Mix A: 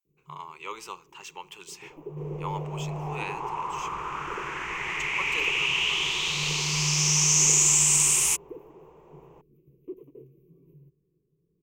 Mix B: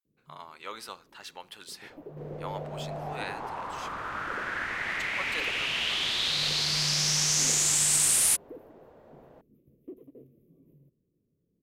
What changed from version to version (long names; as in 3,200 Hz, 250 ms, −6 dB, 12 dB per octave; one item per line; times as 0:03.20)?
master: remove EQ curve with evenly spaced ripples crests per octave 0.73, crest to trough 14 dB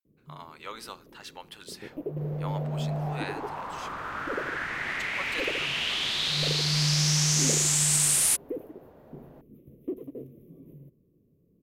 first sound +10.5 dB